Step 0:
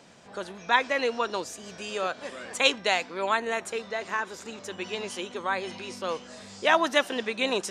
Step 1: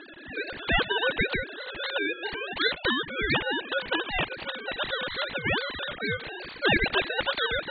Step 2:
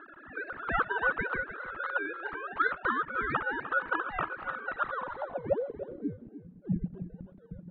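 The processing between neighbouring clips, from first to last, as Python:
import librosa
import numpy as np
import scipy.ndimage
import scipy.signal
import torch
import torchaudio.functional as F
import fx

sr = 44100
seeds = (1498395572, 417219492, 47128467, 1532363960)

y1 = fx.sine_speech(x, sr)
y1 = y1 * np.sin(2.0 * np.pi * 1000.0 * np.arange(len(y1)) / sr)
y1 = fx.spectral_comp(y1, sr, ratio=2.0)
y2 = fx.filter_sweep_lowpass(y1, sr, from_hz=1300.0, to_hz=180.0, start_s=4.83, end_s=6.48, q=7.6)
y2 = y2 + 10.0 ** (-13.0 / 20.0) * np.pad(y2, (int(302 * sr / 1000.0), 0))[:len(y2)]
y2 = y2 * librosa.db_to_amplitude(-8.5)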